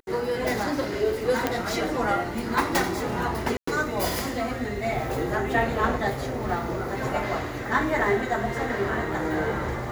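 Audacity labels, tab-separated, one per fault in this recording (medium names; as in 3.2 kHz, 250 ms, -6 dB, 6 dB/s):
1.470000	1.470000	pop -9 dBFS
3.570000	3.670000	dropout 104 ms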